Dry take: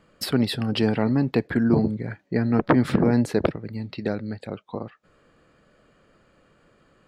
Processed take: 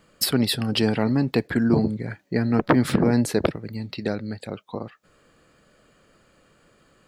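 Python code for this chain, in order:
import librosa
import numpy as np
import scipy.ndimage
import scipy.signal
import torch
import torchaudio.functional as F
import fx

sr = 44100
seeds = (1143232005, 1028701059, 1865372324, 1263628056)

y = fx.high_shelf(x, sr, hz=4700.0, db=12.0)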